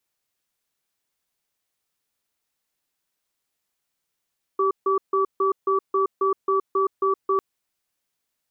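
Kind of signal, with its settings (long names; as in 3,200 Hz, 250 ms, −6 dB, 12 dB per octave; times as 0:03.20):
tone pair in a cadence 389 Hz, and 1,150 Hz, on 0.12 s, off 0.15 s, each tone −20.5 dBFS 2.80 s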